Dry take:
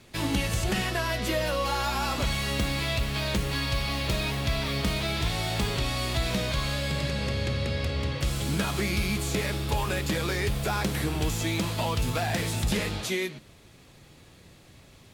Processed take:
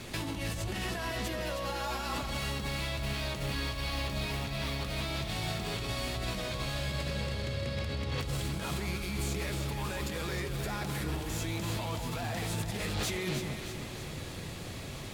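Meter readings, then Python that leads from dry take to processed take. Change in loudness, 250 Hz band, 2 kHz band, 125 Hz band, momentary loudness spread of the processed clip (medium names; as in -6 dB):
-6.5 dB, -6.5 dB, -6.5 dB, -6.0 dB, 2 LU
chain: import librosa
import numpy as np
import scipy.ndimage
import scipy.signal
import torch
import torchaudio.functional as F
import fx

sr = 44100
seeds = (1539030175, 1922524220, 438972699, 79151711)

p1 = fx.over_compress(x, sr, threshold_db=-37.0, ratio=-1.0)
p2 = np.clip(10.0 ** (31.5 / 20.0) * p1, -1.0, 1.0) / 10.0 ** (31.5 / 20.0)
p3 = p2 + fx.echo_alternate(p2, sr, ms=157, hz=1200.0, feedback_pct=74, wet_db=-5, dry=0)
y = p3 * librosa.db_to_amplitude(1.5)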